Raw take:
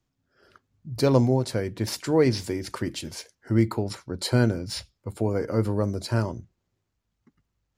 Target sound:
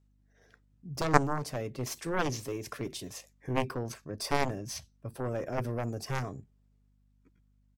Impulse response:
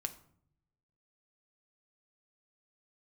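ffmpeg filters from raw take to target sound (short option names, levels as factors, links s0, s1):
-af "aeval=exprs='0.531*(cos(1*acos(clip(val(0)/0.531,-1,1)))-cos(1*PI/2))+0.237*(cos(3*acos(clip(val(0)/0.531,-1,1)))-cos(3*PI/2))+0.00668*(cos(6*acos(clip(val(0)/0.531,-1,1)))-cos(6*PI/2))+0.00422*(cos(7*acos(clip(val(0)/0.531,-1,1)))-cos(7*PI/2))':c=same,asetrate=50951,aresample=44100,atempo=0.865537,aeval=exprs='val(0)+0.000398*(sin(2*PI*50*n/s)+sin(2*PI*2*50*n/s)/2+sin(2*PI*3*50*n/s)/3+sin(2*PI*4*50*n/s)/4+sin(2*PI*5*50*n/s)/5)':c=same,volume=1.26"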